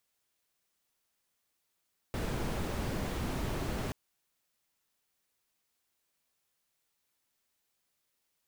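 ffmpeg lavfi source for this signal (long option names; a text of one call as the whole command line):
ffmpeg -f lavfi -i "anoisesrc=color=brown:amplitude=0.0933:duration=1.78:sample_rate=44100:seed=1" out.wav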